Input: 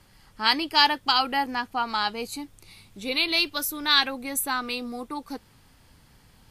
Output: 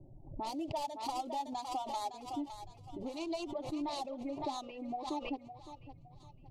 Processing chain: median filter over 25 samples; level-controlled noise filter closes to 330 Hz, open at -26 dBFS; reverb removal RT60 2 s; level-controlled noise filter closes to 670 Hz, open at -28 dBFS; FFT filter 220 Hz 0 dB, 610 Hz +11 dB, 1.2 kHz -2 dB, 13 kHz +13 dB; compression 16:1, threshold -41 dBFS, peak gain reduction 25 dB; distance through air 53 m; static phaser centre 310 Hz, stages 8; on a send: thinning echo 561 ms, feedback 40%, high-pass 660 Hz, level -8.5 dB; on the sum: swell ahead of each attack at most 89 dB/s; trim +7.5 dB

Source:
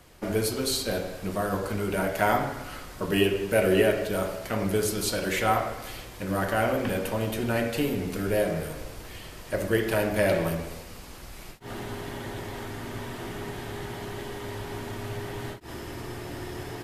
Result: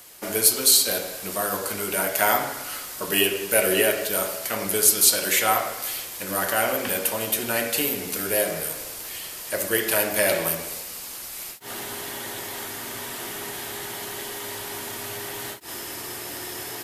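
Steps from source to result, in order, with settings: RIAA curve recording; trim +2.5 dB

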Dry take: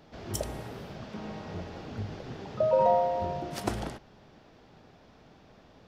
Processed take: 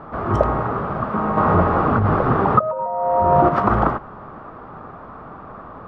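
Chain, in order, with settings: 1.37–3.49 s: compressor with a negative ratio -36 dBFS, ratio -1; resonant low-pass 1.2 kHz, resonance Q 6.3; loudness maximiser +16.5 dB; trim -1 dB

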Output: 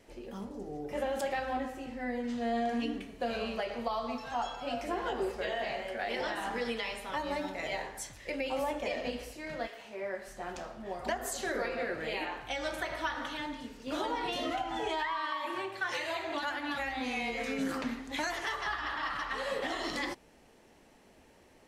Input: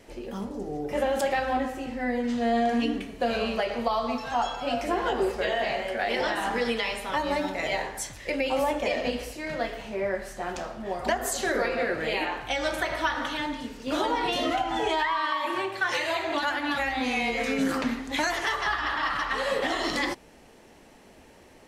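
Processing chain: 9.66–10.26 s: high-pass 860 Hz -> 220 Hz 6 dB/octave; trim -7.5 dB

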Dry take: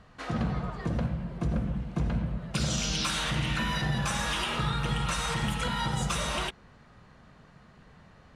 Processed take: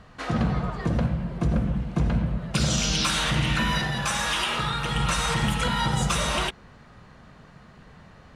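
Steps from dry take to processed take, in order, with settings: 3.82–4.96 s: bass shelf 380 Hz -7.5 dB; trim +5.5 dB

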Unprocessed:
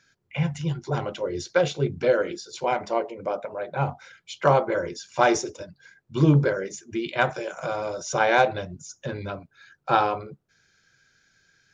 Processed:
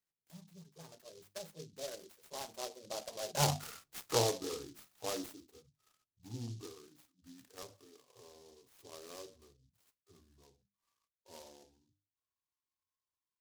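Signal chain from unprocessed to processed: gliding tape speed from 103% -> 72%; Doppler pass-by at 3.60 s, 40 m/s, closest 4.9 m; hum notches 50/100/150/200/250/300 Hz; delay time shaken by noise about 4.8 kHz, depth 0.14 ms; trim +1 dB

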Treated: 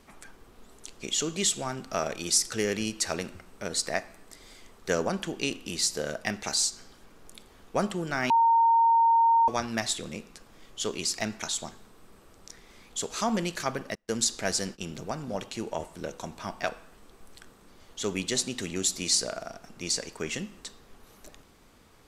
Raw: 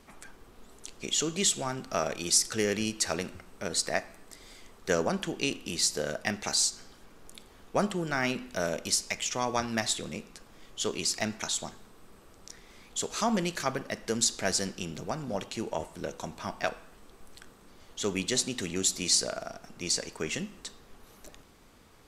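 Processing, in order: 8.30–9.48 s: bleep 919 Hz -17.5 dBFS; 13.95–14.82 s: gate -38 dBFS, range -30 dB

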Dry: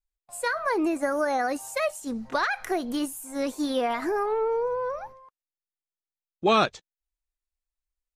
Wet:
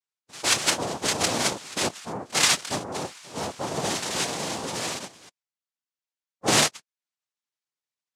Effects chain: coarse spectral quantiser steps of 15 dB; fifteen-band graphic EQ 400 Hz -11 dB, 1.6 kHz +9 dB, 6.3 kHz +5 dB; noise-vocoded speech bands 2

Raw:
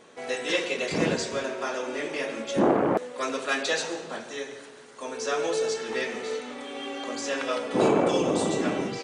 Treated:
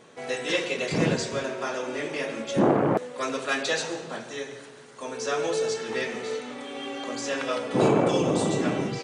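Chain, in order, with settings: peaking EQ 130 Hz +9 dB 0.76 oct

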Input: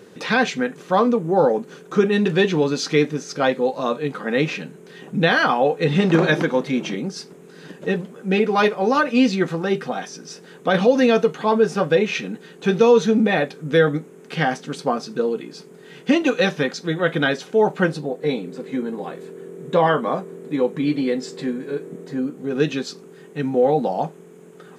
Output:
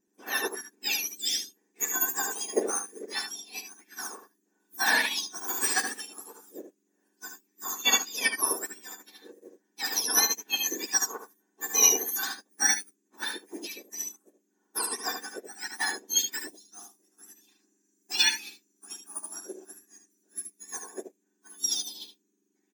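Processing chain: spectrum inverted on a logarithmic axis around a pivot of 1.6 kHz; resonant low shelf 440 Hz +8 dB, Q 3; comb 1.3 ms, depth 35%; tape speed +9%; delay 75 ms -3 dB; upward expansion 2.5:1, over -37 dBFS

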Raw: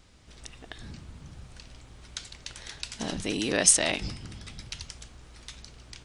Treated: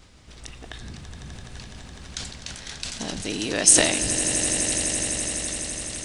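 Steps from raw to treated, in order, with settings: dynamic bell 8.2 kHz, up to +5 dB, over -45 dBFS, Q 0.76; in parallel at +0.5 dB: compression, threshold -42 dBFS, peak gain reduction 29 dB; on the sum: echo with a slow build-up 84 ms, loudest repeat 8, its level -12 dB; decay stretcher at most 58 dB/s; trim -1.5 dB

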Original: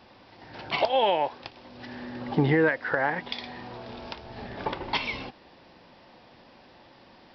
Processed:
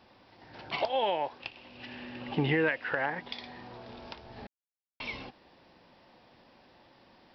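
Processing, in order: 1.40–3.06 s: peaking EQ 2.7 kHz +14 dB 0.51 oct; 4.47–5.00 s: mute; trim -6 dB

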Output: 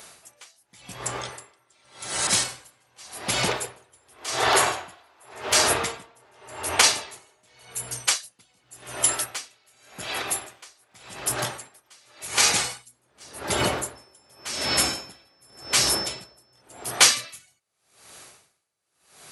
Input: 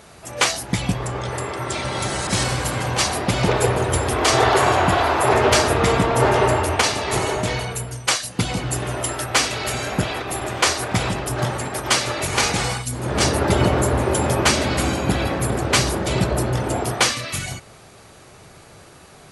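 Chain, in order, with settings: tilt EQ +3 dB/octave; 13.95–16.60 s: whistle 5.3 kHz -22 dBFS; logarithmic tremolo 0.88 Hz, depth 37 dB; trim -2.5 dB

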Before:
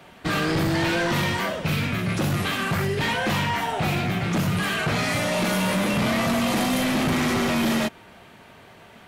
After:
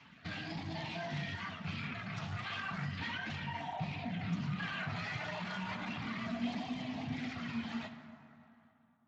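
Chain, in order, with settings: fade out at the end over 2.99 s; reverb removal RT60 0.91 s; Chebyshev band-stop 280–670 Hz, order 3; treble shelf 5 kHz -5 dB, from 3.35 s -10 dB; peak limiter -26 dBFS, peak gain reduction 11 dB; flange 1.5 Hz, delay 1.8 ms, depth 9.9 ms, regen -5%; LFO notch sine 0.33 Hz 250–1500 Hz; flange 0.28 Hz, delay 0.3 ms, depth 9.8 ms, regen -62%; plate-style reverb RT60 2.9 s, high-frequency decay 0.45×, DRR 7 dB; trim +2 dB; Speex 21 kbps 16 kHz

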